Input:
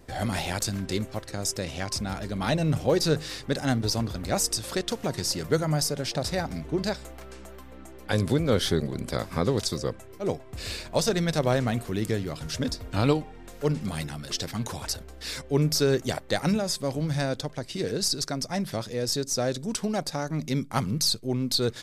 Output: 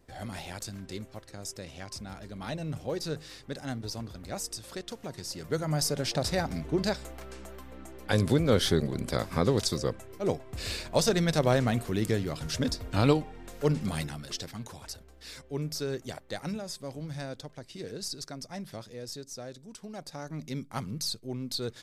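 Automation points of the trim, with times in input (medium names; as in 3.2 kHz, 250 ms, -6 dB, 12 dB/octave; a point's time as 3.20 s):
5.28 s -10.5 dB
5.94 s -0.5 dB
13.97 s -0.5 dB
14.69 s -10.5 dB
18.76 s -10.5 dB
19.73 s -17 dB
20.28 s -8.5 dB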